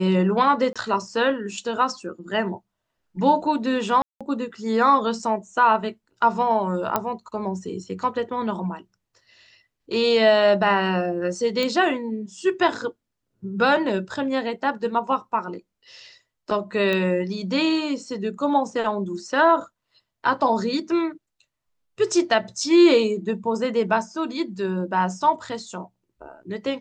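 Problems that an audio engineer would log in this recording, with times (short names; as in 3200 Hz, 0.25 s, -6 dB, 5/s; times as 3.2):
0.73–0.76 gap 26 ms
4.02–4.21 gap 0.186 s
6.96 pop -7 dBFS
11.63 pop -12 dBFS
16.93 pop -13 dBFS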